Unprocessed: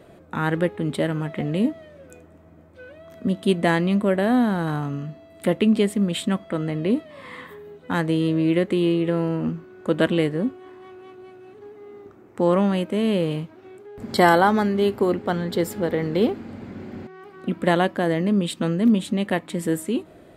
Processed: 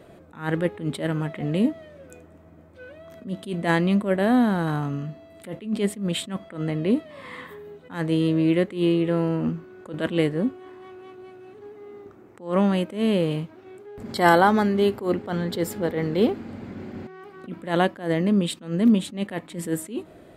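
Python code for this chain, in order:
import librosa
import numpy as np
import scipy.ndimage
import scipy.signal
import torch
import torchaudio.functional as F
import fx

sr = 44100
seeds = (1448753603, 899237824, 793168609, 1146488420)

y = fx.attack_slew(x, sr, db_per_s=160.0)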